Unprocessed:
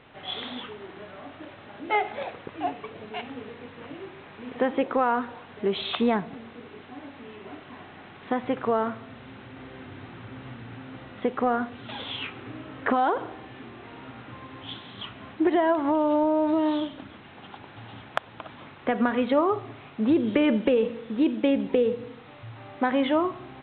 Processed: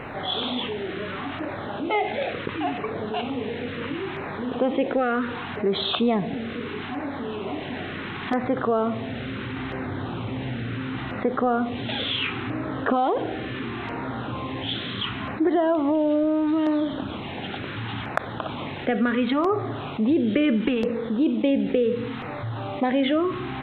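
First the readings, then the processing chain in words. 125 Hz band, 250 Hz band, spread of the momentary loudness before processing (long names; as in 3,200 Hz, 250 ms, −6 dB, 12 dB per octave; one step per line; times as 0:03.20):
+10.0 dB, +3.0 dB, 21 LU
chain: dynamic equaliser 930 Hz, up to −7 dB, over −45 dBFS, Q 5.3
auto-filter notch saw down 0.72 Hz 470–3,700 Hz
envelope flattener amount 50%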